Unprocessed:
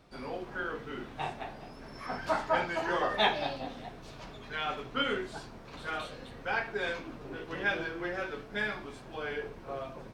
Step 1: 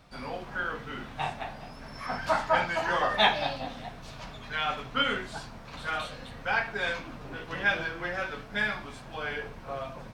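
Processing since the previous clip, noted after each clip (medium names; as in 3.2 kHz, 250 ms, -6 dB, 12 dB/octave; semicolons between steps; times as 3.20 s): peaking EQ 370 Hz -10 dB 0.79 oct; trim +5 dB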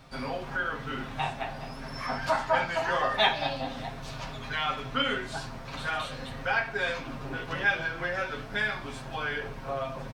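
comb 7.5 ms, depth 47%; in parallel at +3 dB: compression, threshold -35 dBFS, peak gain reduction 17.5 dB; on the sum: trim -4 dB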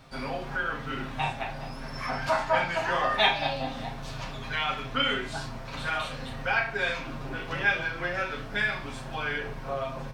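dynamic bell 2.4 kHz, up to +4 dB, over -47 dBFS, Q 4.1; on a send: flutter echo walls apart 5.9 m, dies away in 0.24 s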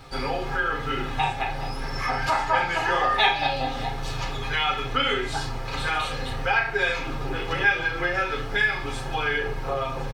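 comb 2.4 ms, depth 61%; compression 1.5:1, threshold -32 dBFS, peak gain reduction 6 dB; trim +6.5 dB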